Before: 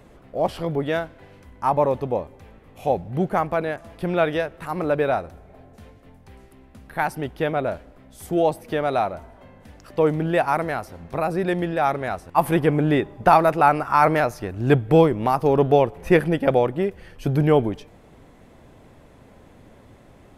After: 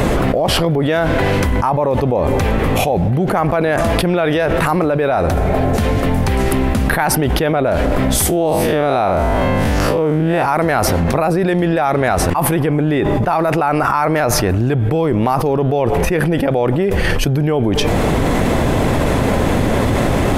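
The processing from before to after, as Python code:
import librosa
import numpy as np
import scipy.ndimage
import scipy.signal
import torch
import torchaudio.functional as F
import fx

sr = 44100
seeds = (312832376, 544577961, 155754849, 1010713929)

y = fx.spec_blur(x, sr, span_ms=106.0, at=(8.28, 10.42), fade=0.02)
y = fx.env_flatten(y, sr, amount_pct=100)
y = F.gain(torch.from_numpy(y), -3.5).numpy()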